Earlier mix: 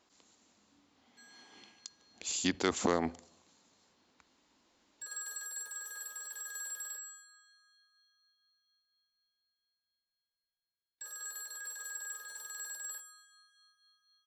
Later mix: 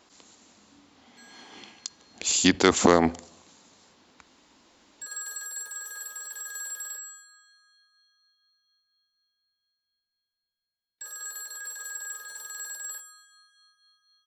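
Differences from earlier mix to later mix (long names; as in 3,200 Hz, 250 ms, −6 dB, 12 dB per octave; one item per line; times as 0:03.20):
speech +11.5 dB
background +5.5 dB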